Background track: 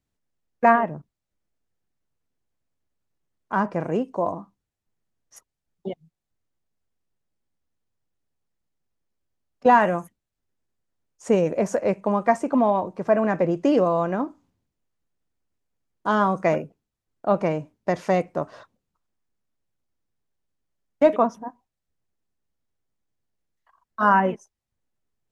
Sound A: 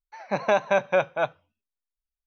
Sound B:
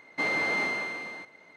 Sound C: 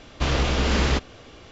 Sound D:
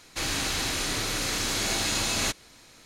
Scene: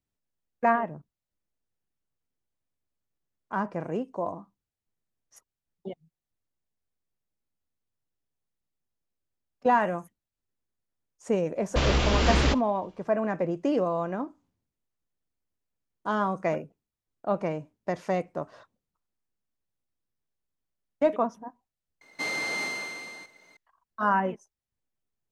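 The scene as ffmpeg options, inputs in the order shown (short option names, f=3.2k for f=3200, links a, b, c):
-filter_complex "[0:a]volume=-6.5dB[a];[3:a]agate=range=-33dB:threshold=-36dB:ratio=3:release=100:detection=peak[b];[2:a]bass=f=250:g=0,treble=f=4k:g=15[c];[b]atrim=end=1.51,asetpts=PTS-STARTPTS,volume=-1.5dB,afade=t=in:d=0.004:c=hsin,afade=t=out:st=1.506:d=0.004:c=hsin,adelay=11550[d];[c]atrim=end=1.56,asetpts=PTS-STARTPTS,volume=-4.5dB,afade=t=in:d=0.004:c=hsin,afade=t=out:st=1.556:d=0.004:c=hsin,adelay=22010[e];[a][d][e]amix=inputs=3:normalize=0"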